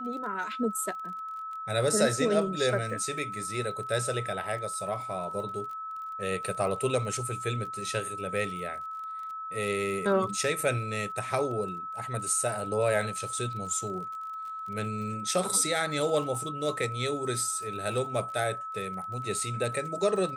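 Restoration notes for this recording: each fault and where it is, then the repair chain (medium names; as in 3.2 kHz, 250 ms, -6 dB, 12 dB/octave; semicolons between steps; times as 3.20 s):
crackle 32 per s -39 dBFS
whine 1.3 kHz -35 dBFS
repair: de-click; band-stop 1.3 kHz, Q 30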